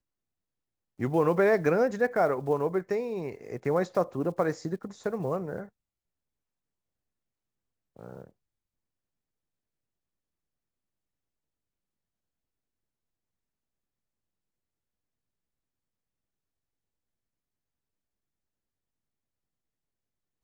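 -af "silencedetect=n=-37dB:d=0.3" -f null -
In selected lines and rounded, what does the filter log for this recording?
silence_start: 0.00
silence_end: 0.99 | silence_duration: 0.99
silence_start: 5.64
silence_end: 7.99 | silence_duration: 2.35
silence_start: 8.24
silence_end: 20.43 | silence_duration: 12.19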